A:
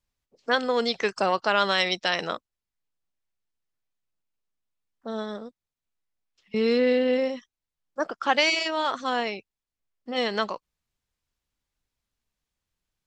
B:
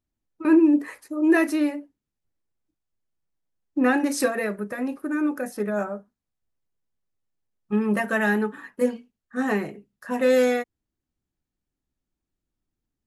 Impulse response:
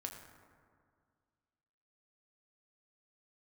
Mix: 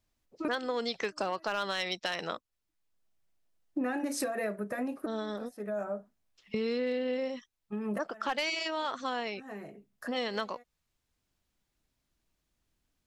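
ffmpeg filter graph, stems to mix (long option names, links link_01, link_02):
-filter_complex "[0:a]volume=13dB,asoftclip=hard,volume=-13dB,volume=2dB,asplit=2[link_01][link_02];[1:a]equalizer=frequency=650:width=5:gain=8.5,alimiter=limit=-13.5dB:level=0:latency=1:release=202,volume=0dB[link_03];[link_02]apad=whole_len=576325[link_04];[link_03][link_04]sidechaincompress=threshold=-53dB:ratio=6:attack=38:release=368[link_05];[link_01][link_05]amix=inputs=2:normalize=0,acompressor=threshold=-33dB:ratio=3"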